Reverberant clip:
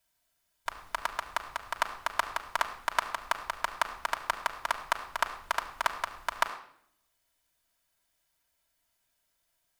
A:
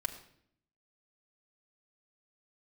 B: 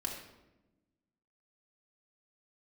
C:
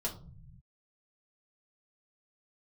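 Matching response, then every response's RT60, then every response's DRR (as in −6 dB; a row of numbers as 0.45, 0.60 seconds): A; non-exponential decay, 1.0 s, 0.45 s; 0.5, −2.0, −4.0 decibels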